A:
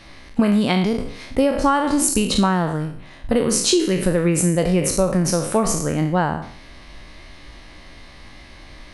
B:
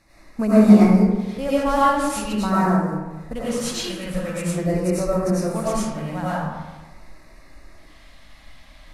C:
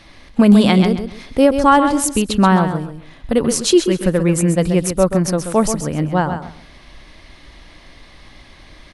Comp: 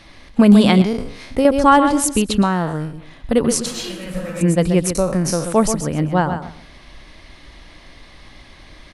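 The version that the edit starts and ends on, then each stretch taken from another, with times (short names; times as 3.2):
C
0.82–1.45 from A
2.42–2.93 from A
3.66–4.41 from B
4.95–5.45 from A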